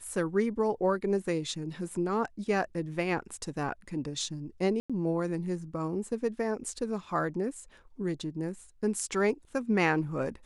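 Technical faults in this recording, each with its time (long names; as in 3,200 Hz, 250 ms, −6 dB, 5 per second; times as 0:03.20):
0:04.80–0:04.90: drop-out 96 ms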